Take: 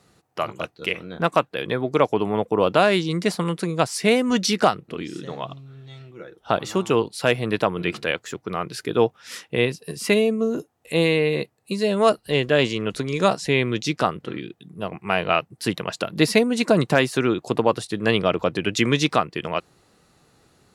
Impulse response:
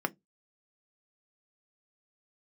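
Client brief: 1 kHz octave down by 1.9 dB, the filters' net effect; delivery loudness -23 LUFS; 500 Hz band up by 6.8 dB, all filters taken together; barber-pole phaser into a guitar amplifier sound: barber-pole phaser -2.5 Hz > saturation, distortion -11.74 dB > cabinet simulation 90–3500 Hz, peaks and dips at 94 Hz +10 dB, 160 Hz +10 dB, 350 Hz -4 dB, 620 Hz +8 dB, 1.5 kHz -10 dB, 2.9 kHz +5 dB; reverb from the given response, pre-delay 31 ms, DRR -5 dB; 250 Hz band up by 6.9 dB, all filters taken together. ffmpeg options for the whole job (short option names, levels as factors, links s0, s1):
-filter_complex "[0:a]equalizer=f=250:t=o:g=6,equalizer=f=500:t=o:g=6,equalizer=f=1000:t=o:g=-9,asplit=2[s0][s1];[1:a]atrim=start_sample=2205,adelay=31[s2];[s1][s2]afir=irnorm=-1:irlink=0,volume=0.841[s3];[s0][s3]amix=inputs=2:normalize=0,asplit=2[s4][s5];[s5]afreqshift=-2.5[s6];[s4][s6]amix=inputs=2:normalize=1,asoftclip=threshold=0.355,highpass=90,equalizer=f=94:t=q:w=4:g=10,equalizer=f=160:t=q:w=4:g=10,equalizer=f=350:t=q:w=4:g=-4,equalizer=f=620:t=q:w=4:g=8,equalizer=f=1500:t=q:w=4:g=-10,equalizer=f=2900:t=q:w=4:g=5,lowpass=f=3500:w=0.5412,lowpass=f=3500:w=1.3066,volume=0.447"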